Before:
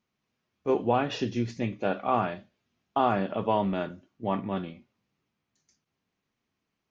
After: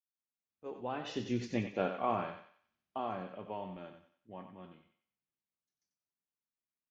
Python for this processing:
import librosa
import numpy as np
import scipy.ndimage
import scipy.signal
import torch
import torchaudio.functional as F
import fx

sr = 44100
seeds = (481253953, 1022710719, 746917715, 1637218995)

y = fx.fade_in_head(x, sr, length_s=2.23)
y = fx.doppler_pass(y, sr, speed_mps=17, closest_m=5.3, pass_at_s=1.47)
y = fx.peak_eq(y, sr, hz=120.0, db=-3.0, octaves=1.1)
y = fx.echo_thinned(y, sr, ms=92, feedback_pct=39, hz=600.0, wet_db=-7.0)